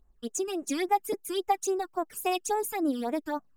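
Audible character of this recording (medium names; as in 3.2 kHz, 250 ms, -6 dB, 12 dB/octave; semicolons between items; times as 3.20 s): phasing stages 12, 3.6 Hz, lowest notch 650–4600 Hz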